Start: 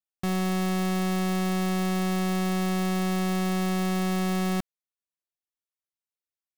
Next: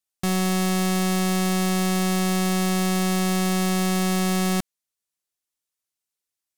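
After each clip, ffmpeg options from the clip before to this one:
ffmpeg -i in.wav -af "equalizer=frequency=8700:width_type=o:width=2.1:gain=7.5,volume=3.5dB" out.wav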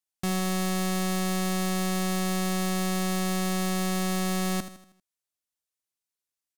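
ffmpeg -i in.wav -af "aecho=1:1:79|158|237|316|395:0.251|0.116|0.0532|0.0244|0.0112,volume=-4.5dB" out.wav

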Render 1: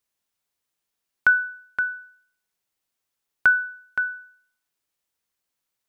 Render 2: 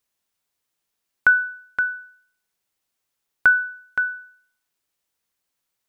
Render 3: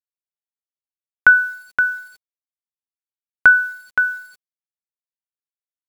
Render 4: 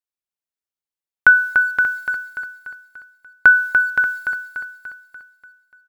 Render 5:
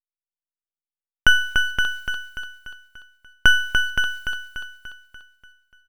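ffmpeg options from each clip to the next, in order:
ffmpeg -i in.wav -filter_complex "[0:a]acrossover=split=2500[link_01][link_02];[link_02]acompressor=threshold=-40dB:ratio=4:attack=1:release=60[link_03];[link_01][link_03]amix=inputs=2:normalize=0,volume=2.5dB" out.wav
ffmpeg -i in.wav -af "acrusher=bits=8:mix=0:aa=0.000001,volume=5dB" out.wav
ffmpeg -i in.wav -af "aecho=1:1:292|584|876|1168|1460|1752:0.501|0.256|0.13|0.0665|0.0339|0.0173" out.wav
ffmpeg -i in.wav -af "aeval=exprs='max(val(0),0)':channel_layout=same" out.wav

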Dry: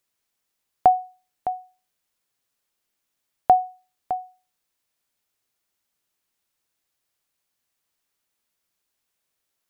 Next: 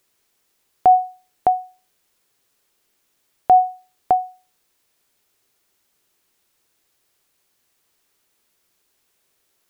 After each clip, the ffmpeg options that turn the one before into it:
ffmpeg -i in.wav -af "equalizer=frequency=390:width_type=o:width=0.55:gain=5.5,alimiter=level_in=15.5dB:limit=-1dB:release=50:level=0:latency=1,volume=-5dB" out.wav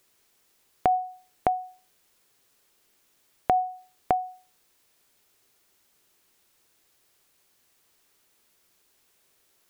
ffmpeg -i in.wav -af "acompressor=threshold=-23dB:ratio=6,volume=1.5dB" out.wav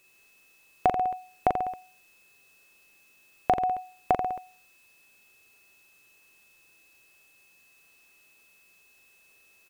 ffmpeg -i in.wav -af "aeval=exprs='val(0)+0.000631*sin(2*PI*2600*n/s)':channel_layout=same,aecho=1:1:40|86|138.9|199.7|269.7:0.631|0.398|0.251|0.158|0.1" out.wav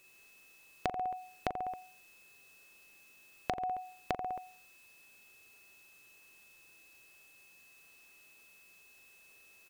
ffmpeg -i in.wav -af "acompressor=threshold=-32dB:ratio=12" out.wav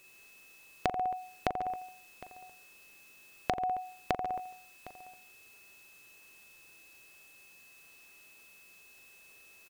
ffmpeg -i in.wav -af "aecho=1:1:759:0.126,volume=3.5dB" out.wav

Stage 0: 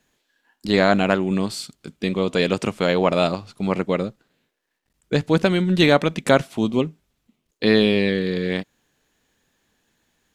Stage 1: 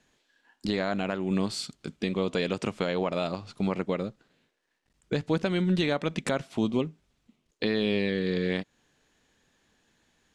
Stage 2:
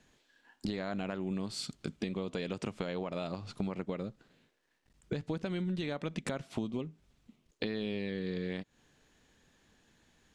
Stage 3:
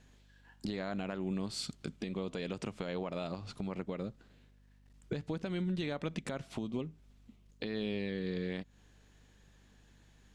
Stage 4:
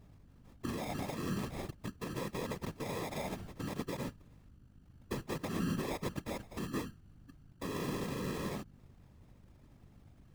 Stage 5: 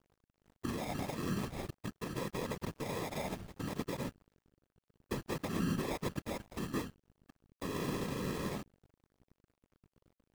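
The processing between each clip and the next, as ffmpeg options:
ffmpeg -i in.wav -af "lowpass=8300,acompressor=threshold=-30dB:ratio=1.5,alimiter=limit=-15.5dB:level=0:latency=1:release=232" out.wav
ffmpeg -i in.wav -af "lowshelf=frequency=220:gain=5,acompressor=threshold=-33dB:ratio=6" out.wav
ffmpeg -i in.wav -af "alimiter=level_in=2dB:limit=-24dB:level=0:latency=1:release=146,volume=-2dB,aeval=exprs='val(0)+0.000794*(sin(2*PI*50*n/s)+sin(2*PI*2*50*n/s)/2+sin(2*PI*3*50*n/s)/3+sin(2*PI*4*50*n/s)/4+sin(2*PI*5*50*n/s)/5)':channel_layout=same" out.wav
ffmpeg -i in.wav -af "acrusher=samples=30:mix=1:aa=0.000001,aeval=exprs='val(0)+0.000794*(sin(2*PI*50*n/s)+sin(2*PI*2*50*n/s)/2+sin(2*PI*3*50*n/s)/3+sin(2*PI*4*50*n/s)/4+sin(2*PI*5*50*n/s)/5)':channel_layout=same,afftfilt=real='hypot(re,im)*cos(2*PI*random(0))':imag='hypot(re,im)*sin(2*PI*random(1))':win_size=512:overlap=0.75,volume=5dB" out.wav
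ffmpeg -i in.wav -af "aeval=exprs='sgn(val(0))*max(abs(val(0))-0.00211,0)':channel_layout=same,volume=1.5dB" out.wav

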